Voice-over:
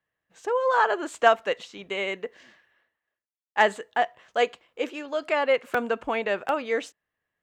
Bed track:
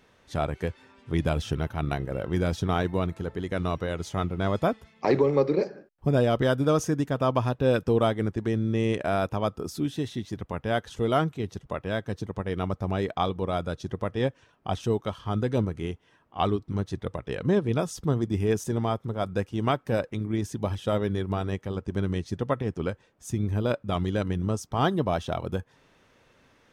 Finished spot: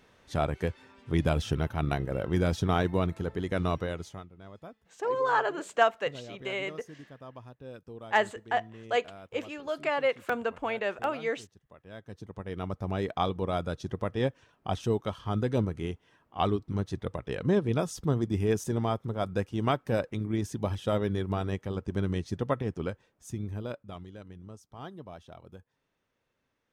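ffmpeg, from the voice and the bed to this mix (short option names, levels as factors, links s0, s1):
-filter_complex "[0:a]adelay=4550,volume=0.596[s0];[1:a]volume=9.44,afade=t=out:st=3.74:d=0.51:silence=0.0841395,afade=t=in:st=11.8:d=1.41:silence=0.1,afade=t=out:st=22.5:d=1.59:silence=0.141254[s1];[s0][s1]amix=inputs=2:normalize=0"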